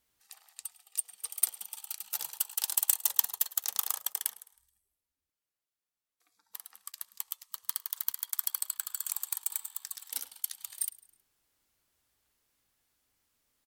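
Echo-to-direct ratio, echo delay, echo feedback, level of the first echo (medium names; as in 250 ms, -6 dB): -20.5 dB, 106 ms, 43%, -21.5 dB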